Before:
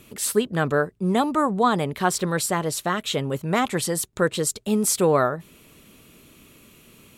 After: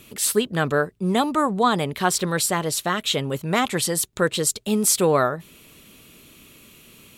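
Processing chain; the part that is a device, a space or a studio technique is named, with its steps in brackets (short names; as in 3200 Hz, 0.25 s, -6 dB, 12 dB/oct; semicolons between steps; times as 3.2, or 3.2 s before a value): presence and air boost (bell 3500 Hz +4.5 dB 1.6 oct; high shelf 9500 Hz +5.5 dB)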